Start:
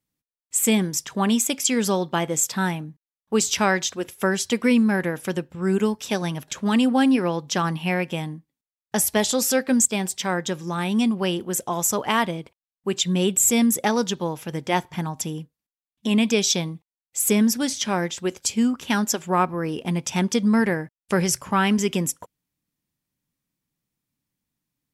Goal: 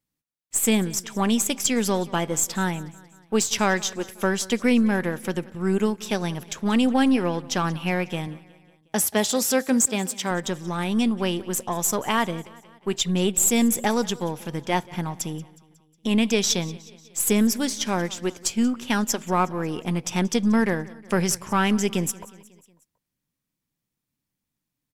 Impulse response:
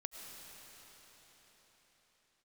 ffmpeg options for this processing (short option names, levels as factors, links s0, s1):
-filter_complex "[0:a]aeval=exprs='if(lt(val(0),0),0.708*val(0),val(0))':c=same,asettb=1/sr,asplit=3[s0][s1][s2];[s0]atrim=end=8.274[s3];[s1]atrim=start=8.27:end=10.31,asetpts=PTS-STARTPTS,afade=t=in:d=0.004:c=qsin,afade=t=out:st=2.036:d=0.004:c=qsin,highpass=89[s4];[s2]atrim=start=10.306[s5];[s3][s4]acrossfade=d=0.004:c1=hsin:c2=qsin[s6];[s6][s5]acrossfade=d=0.004:c1=qsin:c2=hsin,aecho=1:1:182|364|546|728:0.0891|0.0508|0.029|0.0165"